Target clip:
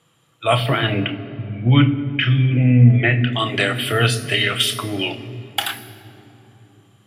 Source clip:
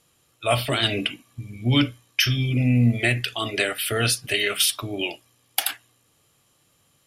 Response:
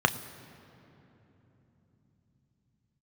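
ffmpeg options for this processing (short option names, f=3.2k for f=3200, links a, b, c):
-filter_complex "[0:a]asettb=1/sr,asplit=3[a][b][c];[a]atrim=end=0.664[d];[b]atrim=start=0.66:end=3.33,asetpts=PTS-STARTPTS,afade=t=in:d=0.004:c=qsin,afade=t=out:st=2.666:d=0.004:c=qsin,lowpass=f=2.6k:w=0.5412,lowpass=f=2.6k:w=1.3066[e];[c]atrim=start=3.326[f];[d][e]acrossfade=d=0.004:c1=hsin:c2=qsin[g];[g][f]acrossfade=d=0.004:c1=qsin:c2=hsin[h];[1:a]atrim=start_sample=2205,asetrate=48510,aresample=44100[i];[h][i]afir=irnorm=-1:irlink=0,volume=-7.5dB"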